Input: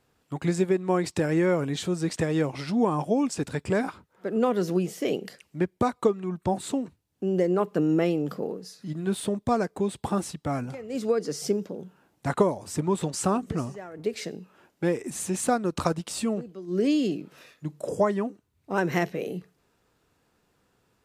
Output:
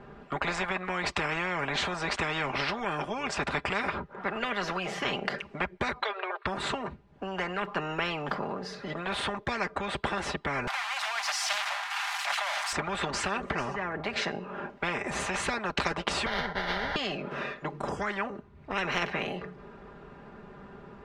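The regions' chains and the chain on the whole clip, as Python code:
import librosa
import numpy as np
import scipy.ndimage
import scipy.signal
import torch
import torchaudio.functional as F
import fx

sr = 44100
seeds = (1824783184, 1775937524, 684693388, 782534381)

y = fx.chain(x, sr, fx.brickwall_highpass(low_hz=380.0),
    fx.high_shelf_res(hz=5400.0, db=-8.5, q=3.0), at=(6.02, 6.46))
y = fx.chain(y, sr, fx.crossing_spikes(level_db=-24.5),
    fx.steep_highpass(hz=720.0, slope=96),
    fx.sustainer(db_per_s=55.0), at=(10.67, 12.73))
y = fx.chain(y, sr, fx.over_compress(threshold_db=-31.0, ratio=-1.0),
    fx.sample_hold(seeds[0], rate_hz=1200.0, jitter_pct=20),
    fx.fixed_phaser(hz=1700.0, stages=8), at=(16.26, 16.96))
y = scipy.signal.sosfilt(scipy.signal.butter(2, 1600.0, 'lowpass', fs=sr, output='sos'), y)
y = y + 0.67 * np.pad(y, (int(5.0 * sr / 1000.0), 0))[:len(y)]
y = fx.spectral_comp(y, sr, ratio=10.0)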